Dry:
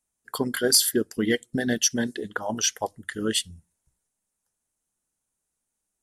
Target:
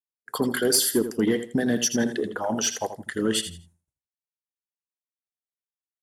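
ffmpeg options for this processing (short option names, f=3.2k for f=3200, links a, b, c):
-filter_complex "[0:a]highpass=54,agate=range=-33dB:threshold=-57dB:ratio=3:detection=peak,equalizer=f=570:t=o:w=2.8:g=7,acrossover=split=290|6300[a][b][c];[b]alimiter=limit=-18.5dB:level=0:latency=1:release=14[d];[a][d][c]amix=inputs=3:normalize=0,asoftclip=type=tanh:threshold=-10.5dB,asplit=2[e][f];[f]aecho=0:1:82|164|246:0.316|0.0727|0.0167[g];[e][g]amix=inputs=2:normalize=0"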